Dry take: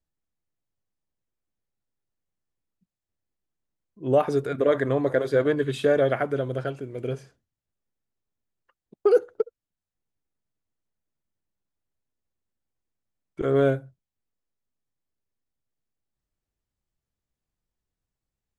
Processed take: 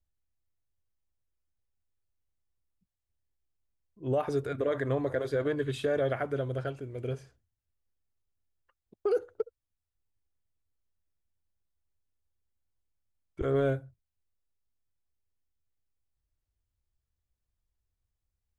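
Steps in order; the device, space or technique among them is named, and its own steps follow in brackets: car stereo with a boomy subwoofer (resonant low shelf 120 Hz +9 dB, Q 1.5; limiter -15 dBFS, peak gain reduction 5 dB); gain -5 dB

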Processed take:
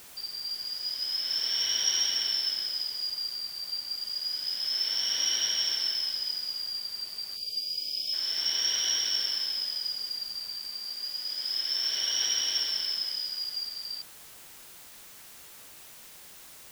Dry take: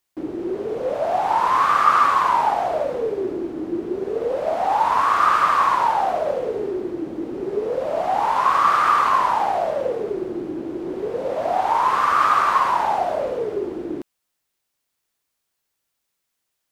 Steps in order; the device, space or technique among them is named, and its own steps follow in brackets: split-band scrambled radio (four-band scrambler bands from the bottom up 4321; BPF 310–3400 Hz; white noise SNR 17 dB); 7.37–8.13 spectral delete 720–2200 Hz; 10.72–12.34 HPF 130 Hz 12 dB/oct; gain -2.5 dB

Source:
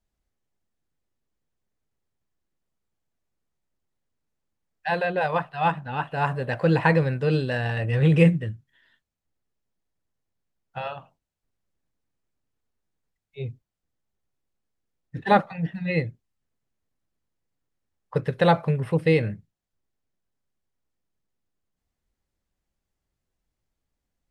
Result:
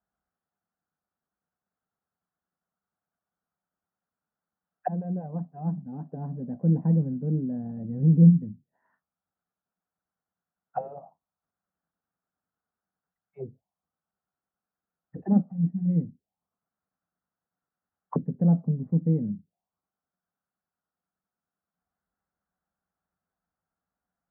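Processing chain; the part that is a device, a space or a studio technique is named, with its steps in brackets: envelope filter bass rig (envelope low-pass 250–1400 Hz down, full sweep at -25.5 dBFS; speaker cabinet 86–2200 Hz, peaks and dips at 120 Hz -9 dB, 180 Hz +8 dB, 350 Hz -4 dB, 730 Hz +8 dB); gain -6.5 dB

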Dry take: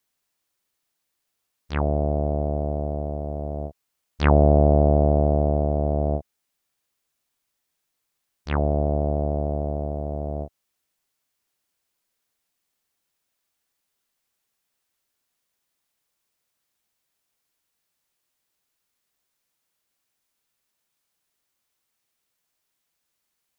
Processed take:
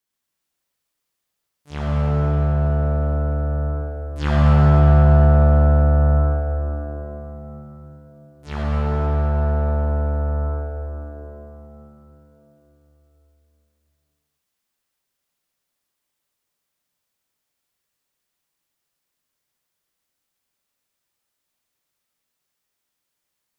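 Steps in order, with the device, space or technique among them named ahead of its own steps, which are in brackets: shimmer-style reverb (harmoniser +12 st -8 dB; reverb RT60 4.1 s, pre-delay 46 ms, DRR -5.5 dB); gain -6.5 dB

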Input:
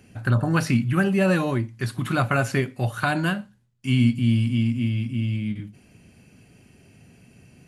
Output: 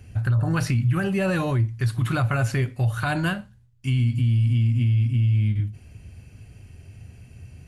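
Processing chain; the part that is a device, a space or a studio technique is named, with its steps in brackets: car stereo with a boomy subwoofer (resonant low shelf 130 Hz +13.5 dB, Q 1.5; limiter -15 dBFS, peak gain reduction 11 dB)

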